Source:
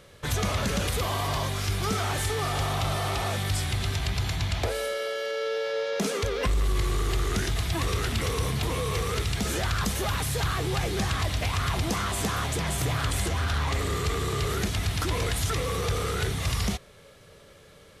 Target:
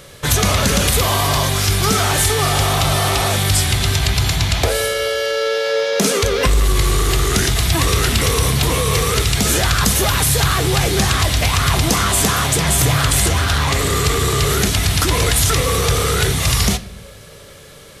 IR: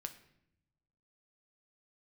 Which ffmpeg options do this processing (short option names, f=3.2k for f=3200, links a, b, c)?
-filter_complex "[0:a]highshelf=f=4.7k:g=8,asplit=2[a][b];[1:a]atrim=start_sample=2205[c];[b][c]afir=irnorm=-1:irlink=0,volume=6.5dB[d];[a][d]amix=inputs=2:normalize=0,volume=3dB"